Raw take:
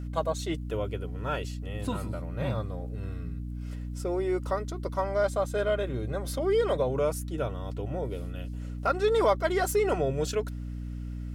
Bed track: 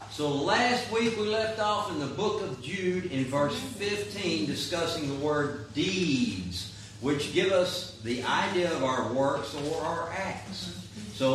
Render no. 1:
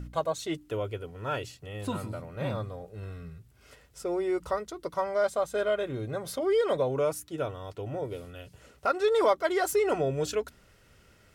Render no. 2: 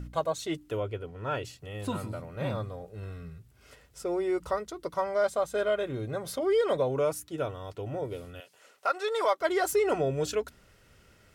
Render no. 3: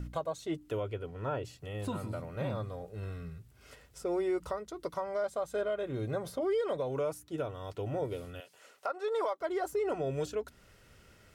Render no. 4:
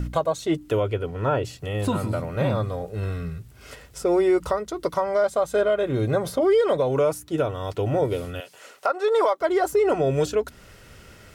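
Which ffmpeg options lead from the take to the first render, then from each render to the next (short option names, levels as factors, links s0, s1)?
-af "bandreject=f=60:t=h:w=4,bandreject=f=120:t=h:w=4,bandreject=f=180:t=h:w=4,bandreject=f=240:t=h:w=4,bandreject=f=300:t=h:w=4"
-filter_complex "[0:a]asettb=1/sr,asplit=3[s0][s1][s2];[s0]atrim=end=0.804[s3];[s1]atrim=start=0.8:end=1.45,asetpts=PTS-STARTPTS,afade=t=in:d=0.004:c=qsin,afade=t=out:st=0.646:d=0.004:c=qsin,aemphasis=mode=reproduction:type=cd[s4];[s2]atrim=start=1.446[s5];[s3][s4]acrossfade=d=0.004:c1=hsin:c2=qsin[s6];[s6][s5]acrossfade=d=0.004:c1=qsin:c2=hsin,asettb=1/sr,asplit=3[s7][s8][s9];[s7]atrim=end=8.404[s10];[s8]atrim=start=8.4:end=9.41,asetpts=PTS-STARTPTS,afade=t=in:d=0.004:c=qsin,afade=t=out:st=1.006:d=0.004:c=qsin,highpass=600[s11];[s9]atrim=start=9.406[s12];[s10][s11]acrossfade=d=0.004:c1=hsin:c2=qsin[s13];[s13][s12]acrossfade=d=0.004:c1=qsin:c2=hsin"
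-filter_complex "[0:a]acrossover=split=1200[s0][s1];[s0]alimiter=level_in=1.19:limit=0.0631:level=0:latency=1:release=348,volume=0.841[s2];[s1]acompressor=threshold=0.00398:ratio=6[s3];[s2][s3]amix=inputs=2:normalize=0"
-af "volume=3.98"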